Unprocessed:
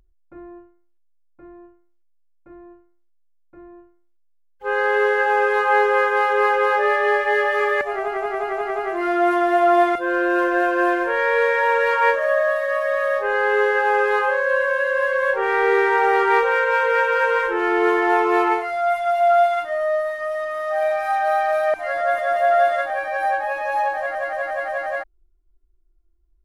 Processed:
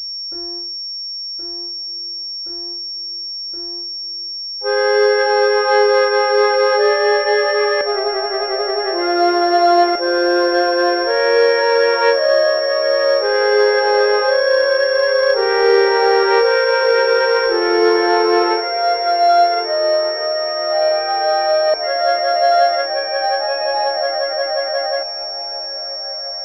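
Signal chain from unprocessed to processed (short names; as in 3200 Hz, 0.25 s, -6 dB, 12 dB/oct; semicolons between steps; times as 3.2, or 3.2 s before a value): ten-band EQ 125 Hz -9 dB, 500 Hz +6 dB, 1000 Hz -4 dB; diffused feedback echo 1.589 s, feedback 50%, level -15 dB; pulse-width modulation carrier 5500 Hz; gain +2.5 dB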